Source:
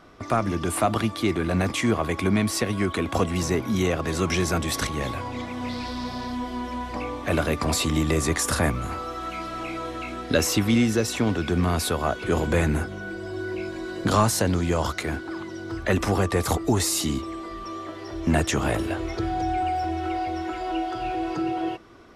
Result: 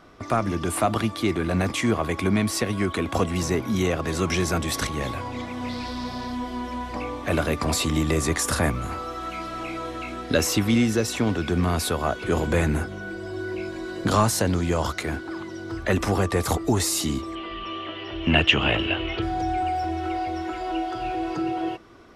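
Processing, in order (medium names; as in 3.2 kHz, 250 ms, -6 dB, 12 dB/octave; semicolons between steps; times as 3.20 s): 17.35–19.22 s: resonant low-pass 2.9 kHz, resonance Q 9.7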